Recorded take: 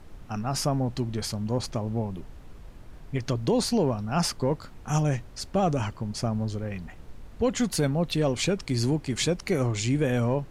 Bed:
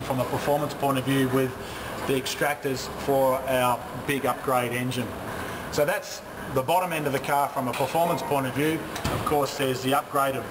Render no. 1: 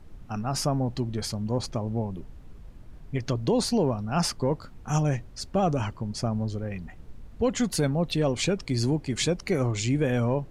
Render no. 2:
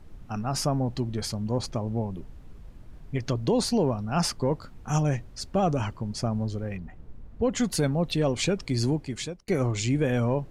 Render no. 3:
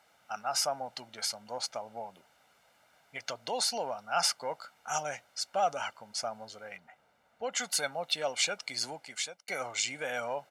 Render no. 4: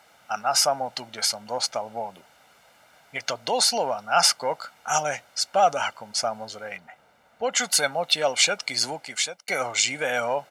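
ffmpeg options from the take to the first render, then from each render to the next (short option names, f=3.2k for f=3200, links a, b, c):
-af "afftdn=nr=6:nf=-46"
-filter_complex "[0:a]asplit=3[a][b][c];[a]afade=t=out:st=6.76:d=0.02[d];[b]highshelf=f=2.3k:g=-11.5,afade=t=in:st=6.76:d=0.02,afade=t=out:st=7.52:d=0.02[e];[c]afade=t=in:st=7.52:d=0.02[f];[d][e][f]amix=inputs=3:normalize=0,asplit=2[g][h];[g]atrim=end=9.48,asetpts=PTS-STARTPTS,afade=t=out:st=8.89:d=0.59[i];[h]atrim=start=9.48,asetpts=PTS-STARTPTS,afade=t=in:d=0.004:c=hsin[j];[i][j]concat=n=2:v=0:a=1"
-af "highpass=850,aecho=1:1:1.4:0.6"
-af "volume=9.5dB"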